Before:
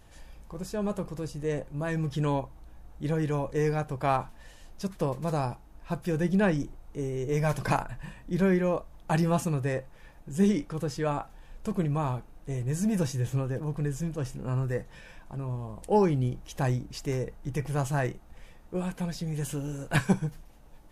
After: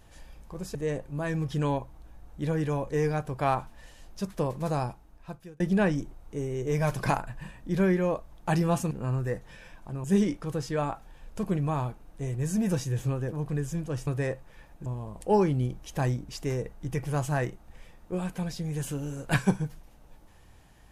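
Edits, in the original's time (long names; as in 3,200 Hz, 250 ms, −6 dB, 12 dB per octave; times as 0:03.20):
0:00.75–0:01.37: remove
0:05.46–0:06.22: fade out
0:09.53–0:10.32: swap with 0:14.35–0:15.48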